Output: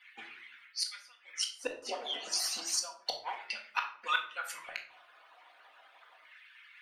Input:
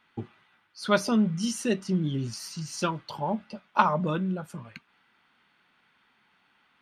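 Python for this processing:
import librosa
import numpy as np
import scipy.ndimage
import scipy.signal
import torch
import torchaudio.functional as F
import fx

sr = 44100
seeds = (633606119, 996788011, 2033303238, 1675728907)

y = fx.hpss_only(x, sr, part='percussive')
y = fx.filter_lfo_highpass(y, sr, shape='square', hz=0.32, low_hz=700.0, high_hz=2000.0, q=4.0)
y = fx.gate_flip(y, sr, shuts_db=-27.0, range_db=-32)
y = fx.room_shoebox(y, sr, seeds[0], volume_m3=640.0, walls='furnished', distance_m=1.9)
y = y * 10.0 ** (7.5 / 20.0)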